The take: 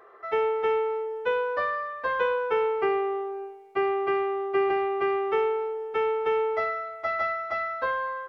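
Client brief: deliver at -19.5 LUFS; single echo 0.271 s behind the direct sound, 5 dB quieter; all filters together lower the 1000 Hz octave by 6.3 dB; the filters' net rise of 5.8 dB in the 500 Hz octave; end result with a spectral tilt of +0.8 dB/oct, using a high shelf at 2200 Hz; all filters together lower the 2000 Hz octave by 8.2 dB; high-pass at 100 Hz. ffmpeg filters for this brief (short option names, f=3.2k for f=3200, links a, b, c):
-af "highpass=100,equalizer=f=500:t=o:g=9,equalizer=f=1k:t=o:g=-8.5,equalizer=f=2k:t=o:g=-5,highshelf=f=2.2k:g=-5.5,aecho=1:1:271:0.562,volume=3.5dB"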